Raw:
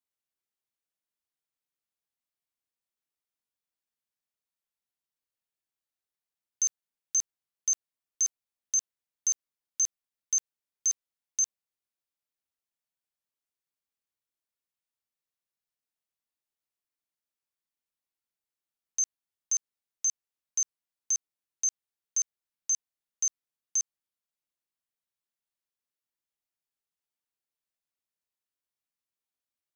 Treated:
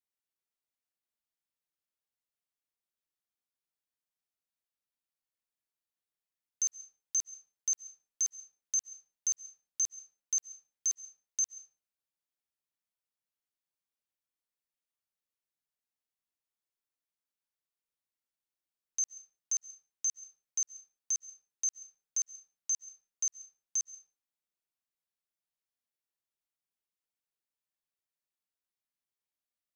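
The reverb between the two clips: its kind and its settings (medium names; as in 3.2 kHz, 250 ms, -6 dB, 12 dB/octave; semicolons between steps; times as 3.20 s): algorithmic reverb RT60 0.5 s, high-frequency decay 0.7×, pre-delay 100 ms, DRR 15.5 dB; trim -4 dB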